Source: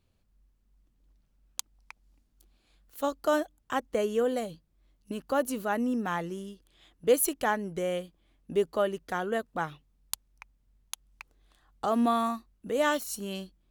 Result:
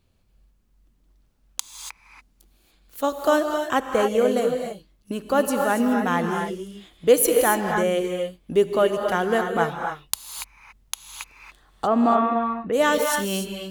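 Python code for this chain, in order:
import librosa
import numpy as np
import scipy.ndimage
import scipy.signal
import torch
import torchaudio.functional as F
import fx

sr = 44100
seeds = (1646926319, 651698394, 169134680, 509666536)

p1 = fx.rider(x, sr, range_db=5, speed_s=0.5)
p2 = x + (p1 * 10.0 ** (0.5 / 20.0))
p3 = fx.steep_lowpass(p2, sr, hz=2800.0, slope=36, at=(11.86, 12.72), fade=0.02)
p4 = fx.rev_gated(p3, sr, seeds[0], gate_ms=310, shape='rising', drr_db=3.0)
y = p4 * 10.0 ** (1.0 / 20.0)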